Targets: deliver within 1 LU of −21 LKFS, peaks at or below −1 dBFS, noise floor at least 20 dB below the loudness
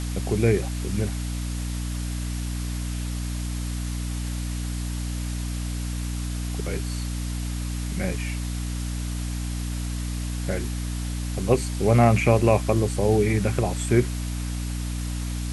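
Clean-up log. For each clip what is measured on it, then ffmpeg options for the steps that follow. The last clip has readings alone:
mains hum 60 Hz; hum harmonics up to 300 Hz; level of the hum −26 dBFS; background noise floor −29 dBFS; target noise floor −47 dBFS; integrated loudness −26.5 LKFS; sample peak −4.5 dBFS; target loudness −21.0 LKFS
→ -af "bandreject=frequency=60:width_type=h:width=6,bandreject=frequency=120:width_type=h:width=6,bandreject=frequency=180:width_type=h:width=6,bandreject=frequency=240:width_type=h:width=6,bandreject=frequency=300:width_type=h:width=6"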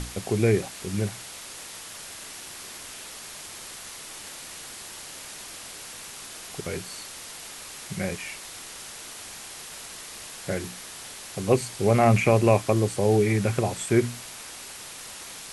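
mains hum none found; background noise floor −41 dBFS; target noise floor −49 dBFS
→ -af "afftdn=noise_reduction=8:noise_floor=-41"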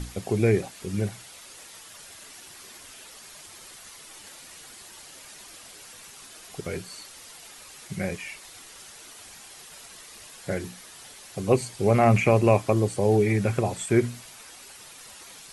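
background noise floor −47 dBFS; integrated loudness −24.5 LKFS; sample peak −6.0 dBFS; target loudness −21.0 LKFS
→ -af "volume=3.5dB"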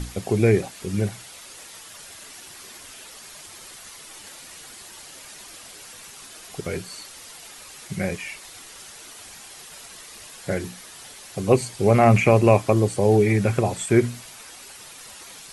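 integrated loudness −21.0 LKFS; sample peak −2.5 dBFS; background noise floor −43 dBFS

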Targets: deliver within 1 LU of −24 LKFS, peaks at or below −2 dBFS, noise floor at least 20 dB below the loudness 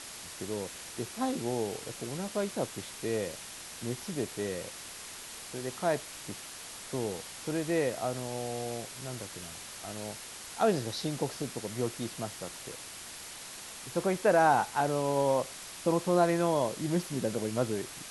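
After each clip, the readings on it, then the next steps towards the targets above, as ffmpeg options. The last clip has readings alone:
background noise floor −45 dBFS; target noise floor −53 dBFS; integrated loudness −33.0 LKFS; sample peak −12.5 dBFS; target loudness −24.0 LKFS
→ -af "afftdn=noise_reduction=8:noise_floor=-45"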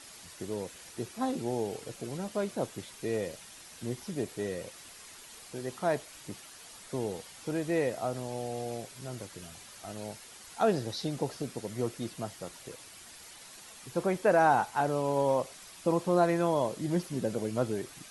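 background noise floor −51 dBFS; target noise floor −53 dBFS
→ -af "afftdn=noise_reduction=6:noise_floor=-51"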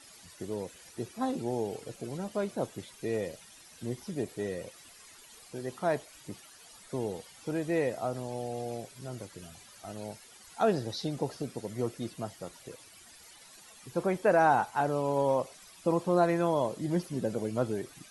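background noise floor −54 dBFS; integrated loudness −32.5 LKFS; sample peak −13.0 dBFS; target loudness −24.0 LKFS
→ -af "volume=8.5dB"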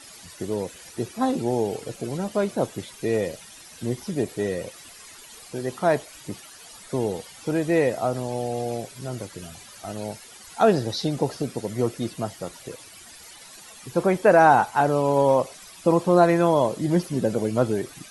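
integrated loudness −24.0 LKFS; sample peak −4.5 dBFS; background noise floor −46 dBFS

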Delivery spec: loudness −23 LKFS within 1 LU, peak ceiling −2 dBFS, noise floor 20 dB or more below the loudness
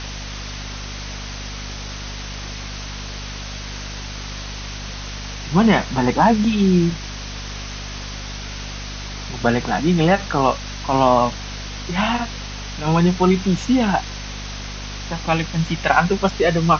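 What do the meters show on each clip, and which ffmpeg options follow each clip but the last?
mains hum 50 Hz; hum harmonics up to 250 Hz; level of the hum −30 dBFS; background noise floor −31 dBFS; target noise floor −42 dBFS; integrated loudness −21.5 LKFS; sample peak −2.0 dBFS; target loudness −23.0 LKFS
→ -af "bandreject=frequency=50:width_type=h:width=6,bandreject=frequency=100:width_type=h:width=6,bandreject=frequency=150:width_type=h:width=6,bandreject=frequency=200:width_type=h:width=6,bandreject=frequency=250:width_type=h:width=6"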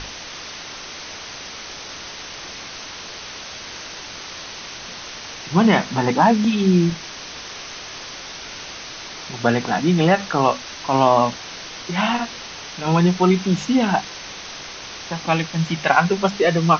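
mains hum none found; background noise floor −35 dBFS; target noise floor −40 dBFS
→ -af "afftdn=noise_reduction=6:noise_floor=-35"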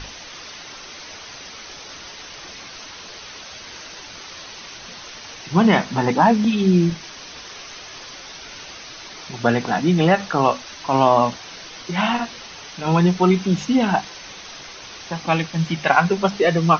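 background noise floor −38 dBFS; target noise floor −39 dBFS
→ -af "afftdn=noise_reduction=6:noise_floor=-38"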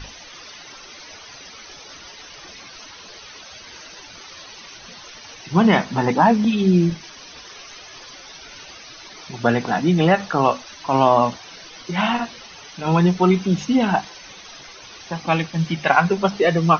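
background noise floor −41 dBFS; integrated loudness −19.0 LKFS; sample peak −2.0 dBFS; target loudness −23.0 LKFS
→ -af "volume=-4dB"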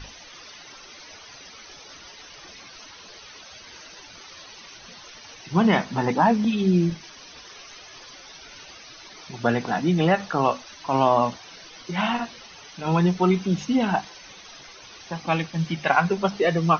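integrated loudness −23.0 LKFS; sample peak −6.0 dBFS; background noise floor −45 dBFS

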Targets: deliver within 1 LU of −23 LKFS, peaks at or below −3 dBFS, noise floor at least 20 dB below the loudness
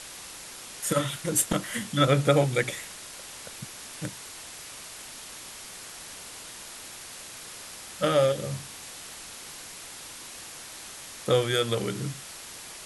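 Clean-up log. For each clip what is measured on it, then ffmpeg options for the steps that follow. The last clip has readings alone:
background noise floor −43 dBFS; target noise floor −51 dBFS; integrated loudness −30.5 LKFS; sample peak −8.0 dBFS; target loudness −23.0 LKFS
→ -af "afftdn=noise_reduction=8:noise_floor=-43"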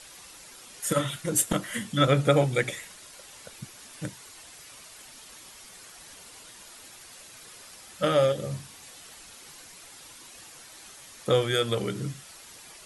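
background noise floor −49 dBFS; integrated loudness −26.5 LKFS; sample peak −8.0 dBFS; target loudness −23.0 LKFS
→ -af "volume=3.5dB"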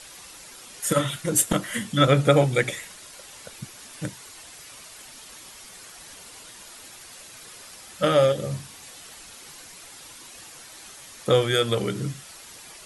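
integrated loudness −23.0 LKFS; sample peak −4.5 dBFS; background noise floor −45 dBFS

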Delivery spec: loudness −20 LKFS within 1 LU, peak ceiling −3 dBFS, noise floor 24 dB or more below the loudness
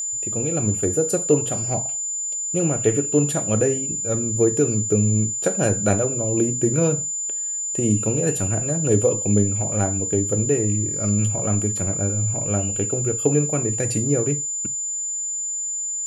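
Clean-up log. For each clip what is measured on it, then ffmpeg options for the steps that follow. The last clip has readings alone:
interfering tone 7,100 Hz; level of the tone −24 dBFS; integrated loudness −21.0 LKFS; sample peak −4.0 dBFS; target loudness −20.0 LKFS
→ -af "bandreject=frequency=7100:width=30"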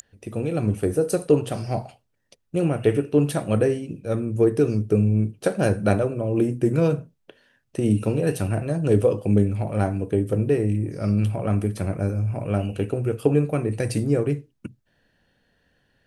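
interfering tone none found; integrated loudness −23.0 LKFS; sample peak −5.0 dBFS; target loudness −20.0 LKFS
→ -af "volume=3dB,alimiter=limit=-3dB:level=0:latency=1"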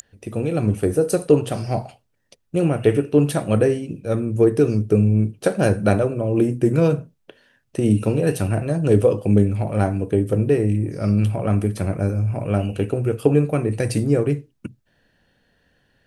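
integrated loudness −20.0 LKFS; sample peak −3.0 dBFS; background noise floor −67 dBFS

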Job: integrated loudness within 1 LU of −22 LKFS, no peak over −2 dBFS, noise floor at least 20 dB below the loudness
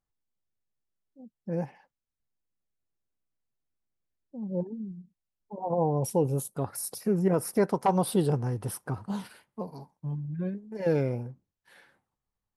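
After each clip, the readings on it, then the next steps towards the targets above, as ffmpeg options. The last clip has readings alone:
integrated loudness −30.0 LKFS; sample peak −13.0 dBFS; target loudness −22.0 LKFS
→ -af "volume=8dB"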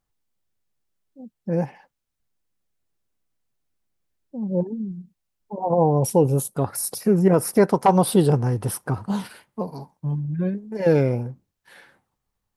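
integrated loudness −22.0 LKFS; sample peak −5.0 dBFS; background noise floor −80 dBFS

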